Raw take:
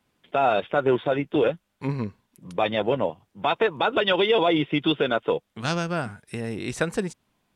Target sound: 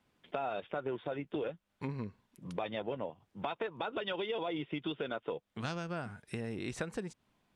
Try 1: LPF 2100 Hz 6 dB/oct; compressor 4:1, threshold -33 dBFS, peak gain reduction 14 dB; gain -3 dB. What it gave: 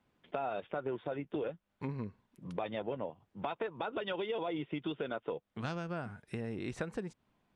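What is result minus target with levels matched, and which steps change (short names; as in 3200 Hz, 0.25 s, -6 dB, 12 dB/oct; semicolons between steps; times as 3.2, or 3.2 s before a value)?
8000 Hz band -6.5 dB
change: LPF 5900 Hz 6 dB/oct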